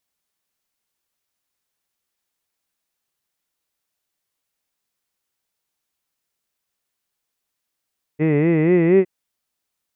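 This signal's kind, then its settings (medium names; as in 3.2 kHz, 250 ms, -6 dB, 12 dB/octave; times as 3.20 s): formant-synthesis vowel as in hid, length 0.86 s, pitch 147 Hz, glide +4 st, vibrato 4.2 Hz, vibrato depth 1.2 st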